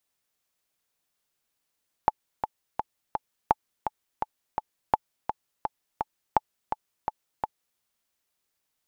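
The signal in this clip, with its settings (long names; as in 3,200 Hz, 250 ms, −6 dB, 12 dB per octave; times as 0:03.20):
click track 168 BPM, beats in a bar 4, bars 4, 863 Hz, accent 8 dB −5.5 dBFS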